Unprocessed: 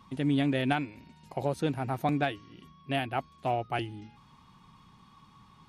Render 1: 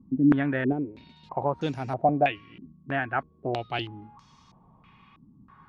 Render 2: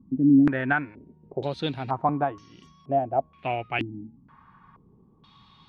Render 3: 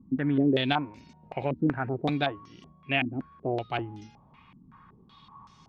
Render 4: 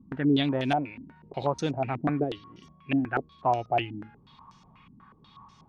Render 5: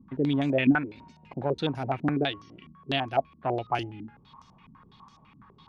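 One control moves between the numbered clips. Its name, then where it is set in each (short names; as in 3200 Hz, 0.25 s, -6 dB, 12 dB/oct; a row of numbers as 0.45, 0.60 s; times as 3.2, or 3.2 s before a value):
stepped low-pass, rate: 3.1, 2.1, 5.3, 8.2, 12 Hz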